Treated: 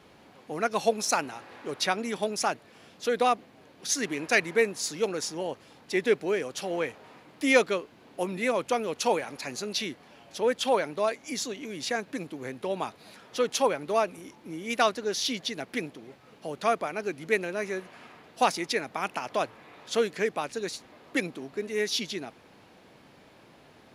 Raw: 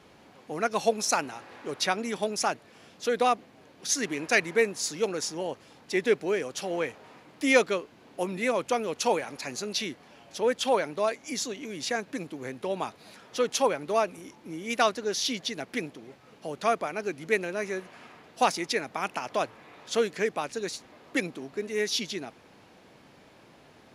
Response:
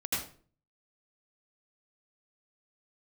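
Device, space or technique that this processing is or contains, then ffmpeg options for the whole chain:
exciter from parts: -filter_complex "[0:a]asplit=2[s0][s1];[s1]highpass=f=4200:w=0.5412,highpass=f=4200:w=1.3066,asoftclip=type=tanh:threshold=0.0562,highpass=4800,volume=0.224[s2];[s0][s2]amix=inputs=2:normalize=0"

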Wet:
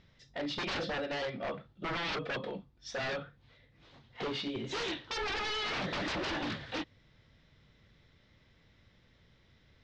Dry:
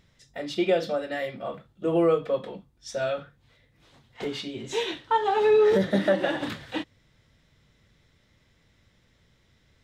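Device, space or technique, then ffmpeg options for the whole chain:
synthesiser wavefolder: -af "aeval=exprs='0.0355*(abs(mod(val(0)/0.0355+3,4)-2)-1)':c=same,lowpass=f=5300:w=0.5412,lowpass=f=5300:w=1.3066,volume=0.891"

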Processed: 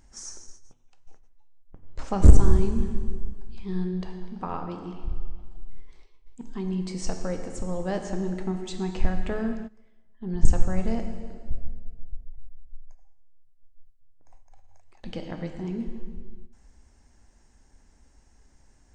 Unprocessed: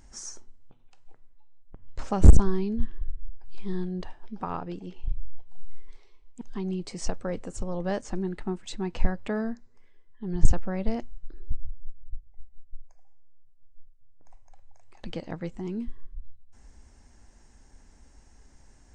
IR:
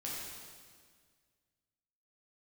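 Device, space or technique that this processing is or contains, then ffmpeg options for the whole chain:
keyed gated reverb: -filter_complex "[0:a]asplit=3[s0][s1][s2];[1:a]atrim=start_sample=2205[s3];[s1][s3]afir=irnorm=-1:irlink=0[s4];[s2]apad=whole_len=835588[s5];[s4][s5]sidechaingate=range=0.0891:threshold=0.00708:ratio=16:detection=peak,volume=0.794[s6];[s0][s6]amix=inputs=2:normalize=0,volume=0.668"

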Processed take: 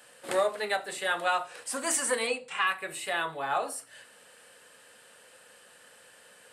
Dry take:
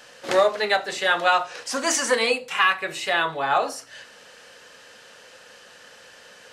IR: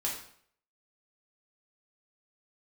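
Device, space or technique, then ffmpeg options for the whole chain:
budget condenser microphone: -filter_complex "[0:a]highpass=70,highshelf=f=7300:t=q:w=3:g=6.5,asettb=1/sr,asplit=3[s0][s1][s2];[s0]atrim=end=2.274[s3];[s1]atrim=start=2.27:end=2.67,asetpts=PTS-STARTPTS,afade=t=in:d=0.004:c=qsin,afade=t=out:st=0.396:d=0.004:c=qsin,lowpass=f=7600:w=0.5412,lowpass=f=7600:w=1.3066[s4];[s2]atrim=start=2.666[s5];[s3][s4]acrossfade=d=0.004:c1=hsin:c2=qsin[s6];[s6][s5]acrossfade=d=0.004:c1=qsin:c2=hsin,volume=0.398"

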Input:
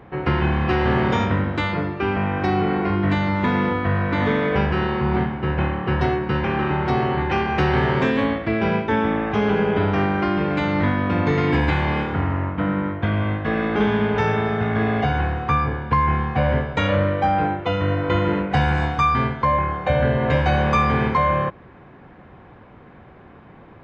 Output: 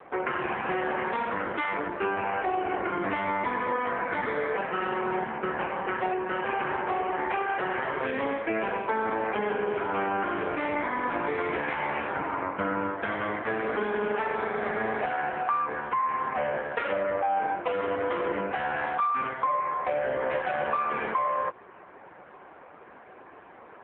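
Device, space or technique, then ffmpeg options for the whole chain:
voicemail: -af "highpass=440,lowpass=2700,acompressor=threshold=0.0447:ratio=8,volume=1.68" -ar 8000 -c:a libopencore_amrnb -b:a 5150

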